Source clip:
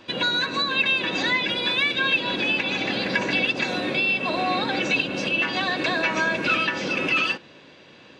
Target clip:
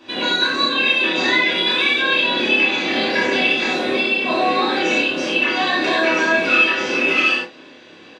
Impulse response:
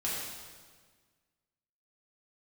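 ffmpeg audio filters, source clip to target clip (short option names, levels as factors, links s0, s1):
-filter_complex "[0:a]lowshelf=f=200:t=q:w=1.5:g=-7.5,asplit=2[s0][s1];[s1]adelay=28,volume=0.631[s2];[s0][s2]amix=inputs=2:normalize=0[s3];[1:a]atrim=start_sample=2205,afade=t=out:st=0.16:d=0.01,atrim=end_sample=7497[s4];[s3][s4]afir=irnorm=-1:irlink=0"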